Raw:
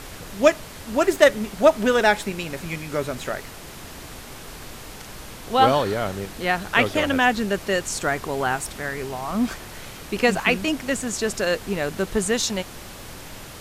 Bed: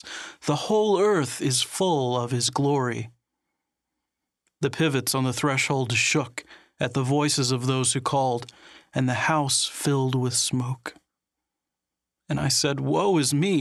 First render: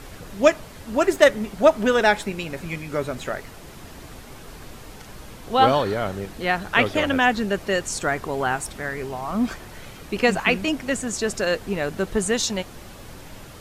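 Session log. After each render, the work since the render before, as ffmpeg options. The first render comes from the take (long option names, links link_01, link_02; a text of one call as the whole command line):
ffmpeg -i in.wav -af "afftdn=noise_reduction=6:noise_floor=-40" out.wav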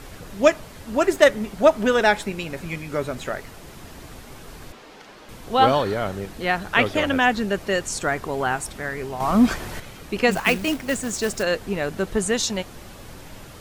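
ffmpeg -i in.wav -filter_complex "[0:a]asettb=1/sr,asplit=3[link_01][link_02][link_03];[link_01]atrim=end=4.724[link_04];[link_02]atrim=start=4.72:end=5.29,asetpts=PTS-STARTPTS,afade=type=in:duration=0.004:curve=qsin,afade=type=out:start_time=0.566:duration=0.004:curve=qsin,acrossover=split=220 5600:gain=0.112 1 0.2[link_05][link_06][link_07];[link_05][link_06][link_07]amix=inputs=3:normalize=0[link_08];[link_03]atrim=start=5.286[link_09];[link_04][link_08]acrossfade=duration=0.004:curve1=hsin:curve2=qsin[link_10];[link_10][link_09]acrossfade=duration=0.004:curve1=qsin:curve2=hsin,asettb=1/sr,asplit=3[link_11][link_12][link_13];[link_11]atrim=end=9.204[link_14];[link_12]atrim=start=9.2:end=9.8,asetpts=PTS-STARTPTS,afade=type=in:duration=0.004:curve=qsin,afade=type=out:start_time=0.596:duration=0.004:curve=qsin,acontrast=88[link_15];[link_13]atrim=start=9.796[link_16];[link_14][link_15]acrossfade=duration=0.004:curve1=hsin:curve2=qsin[link_17];[link_17][link_16]acrossfade=duration=0.004:curve1=qsin:curve2=hsin,asettb=1/sr,asplit=3[link_18][link_19][link_20];[link_18]atrim=end=10.314[link_21];[link_19]atrim=start=10.31:end=11.43,asetpts=PTS-STARTPTS,afade=type=in:duration=0.004:curve=qsin,afade=type=out:start_time=1.116:duration=0.004:curve=qsin,acrusher=bits=3:mode=log:mix=0:aa=0.000001[link_22];[link_20]atrim=start=11.426[link_23];[link_21][link_22]acrossfade=duration=0.004:curve1=hsin:curve2=qsin[link_24];[link_24][link_23]acrossfade=duration=0.004:curve1=qsin:curve2=hsin" out.wav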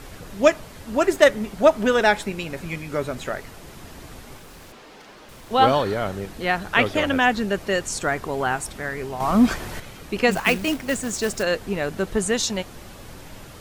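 ffmpeg -i in.wav -filter_complex "[0:a]asettb=1/sr,asplit=3[link_01][link_02][link_03];[link_01]atrim=end=4.374[link_04];[link_02]atrim=start=4.37:end=5.51,asetpts=PTS-STARTPTS,afade=type=in:duration=0.004:curve=qsin,afade=type=out:start_time=1.136:duration=0.004:curve=qsin,aeval=exprs='0.0119*(abs(mod(val(0)/0.0119+3,4)-2)-1)':channel_layout=same[link_05];[link_03]atrim=start=5.506[link_06];[link_04][link_05]acrossfade=duration=0.004:curve1=hsin:curve2=qsin[link_07];[link_07][link_06]acrossfade=duration=0.004:curve1=qsin:curve2=hsin" out.wav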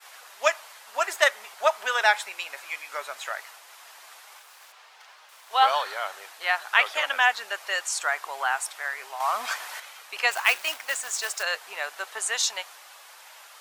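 ffmpeg -i in.wav -af "highpass=frequency=790:width=0.5412,highpass=frequency=790:width=1.3066,agate=range=-33dB:threshold=-44dB:ratio=3:detection=peak" out.wav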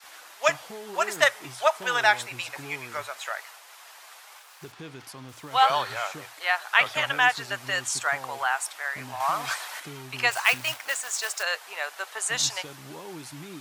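ffmpeg -i in.wav -i bed.wav -filter_complex "[1:a]volume=-19.5dB[link_01];[0:a][link_01]amix=inputs=2:normalize=0" out.wav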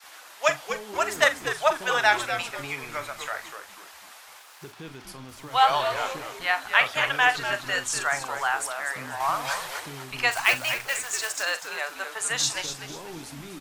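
ffmpeg -i in.wav -filter_complex "[0:a]asplit=2[link_01][link_02];[link_02]adelay=43,volume=-12.5dB[link_03];[link_01][link_03]amix=inputs=2:normalize=0,asplit=2[link_04][link_05];[link_05]asplit=4[link_06][link_07][link_08][link_09];[link_06]adelay=245,afreqshift=-130,volume=-9dB[link_10];[link_07]adelay=490,afreqshift=-260,volume=-18.6dB[link_11];[link_08]adelay=735,afreqshift=-390,volume=-28.3dB[link_12];[link_09]adelay=980,afreqshift=-520,volume=-37.9dB[link_13];[link_10][link_11][link_12][link_13]amix=inputs=4:normalize=0[link_14];[link_04][link_14]amix=inputs=2:normalize=0" out.wav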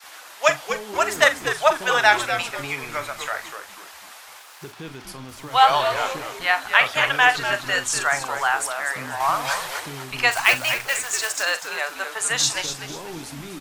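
ffmpeg -i in.wav -af "volume=4.5dB,alimiter=limit=-1dB:level=0:latency=1" out.wav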